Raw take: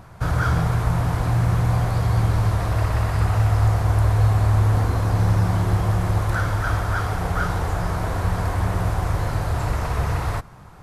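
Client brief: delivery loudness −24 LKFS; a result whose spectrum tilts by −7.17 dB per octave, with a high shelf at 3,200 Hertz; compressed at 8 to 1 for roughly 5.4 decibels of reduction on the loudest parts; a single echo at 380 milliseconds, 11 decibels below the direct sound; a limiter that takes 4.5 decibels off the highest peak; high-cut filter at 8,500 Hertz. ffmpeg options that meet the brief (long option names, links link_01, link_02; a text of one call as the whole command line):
ffmpeg -i in.wav -af "lowpass=8500,highshelf=frequency=3200:gain=-5,acompressor=threshold=-19dB:ratio=8,alimiter=limit=-17dB:level=0:latency=1,aecho=1:1:380:0.282,volume=2dB" out.wav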